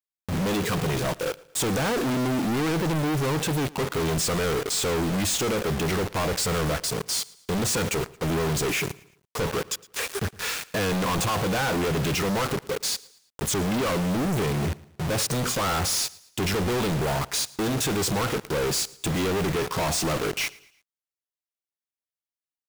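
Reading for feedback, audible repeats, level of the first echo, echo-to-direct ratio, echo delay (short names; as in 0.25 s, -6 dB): 42%, 2, -22.0 dB, -21.0 dB, 0.112 s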